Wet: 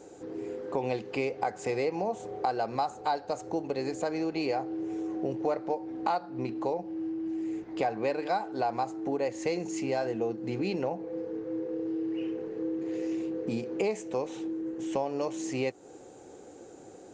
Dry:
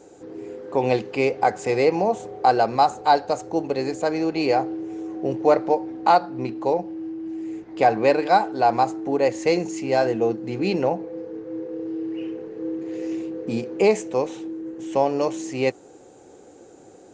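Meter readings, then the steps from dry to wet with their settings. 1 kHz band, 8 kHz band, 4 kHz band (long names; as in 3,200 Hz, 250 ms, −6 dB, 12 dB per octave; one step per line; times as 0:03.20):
−11.5 dB, −6.0 dB, −9.5 dB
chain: downward compressor 3 to 1, threshold −28 dBFS, peak gain reduction 12.5 dB
level −1.5 dB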